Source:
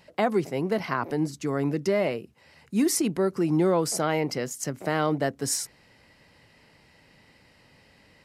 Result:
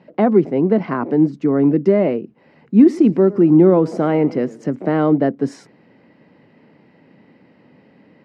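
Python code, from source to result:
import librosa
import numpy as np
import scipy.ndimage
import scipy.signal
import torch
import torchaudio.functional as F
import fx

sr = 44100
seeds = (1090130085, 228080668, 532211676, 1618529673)

y = fx.bandpass_edges(x, sr, low_hz=160.0, high_hz=2500.0)
y = fx.peak_eq(y, sr, hz=240.0, db=15.0, octaves=2.6)
y = fx.echo_warbled(y, sr, ms=112, feedback_pct=46, rate_hz=2.8, cents=140, wet_db=-20.0, at=(2.76, 4.76))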